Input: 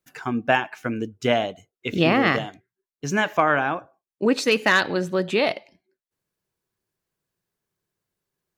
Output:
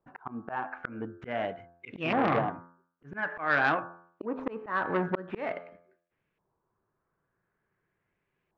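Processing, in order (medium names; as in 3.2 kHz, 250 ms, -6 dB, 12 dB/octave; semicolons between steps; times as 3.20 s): median filter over 9 samples; de-hum 86.26 Hz, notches 20; LFO low-pass saw up 0.47 Hz 920–2600 Hz; slow attack 676 ms; transformer saturation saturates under 1.3 kHz; trim +4.5 dB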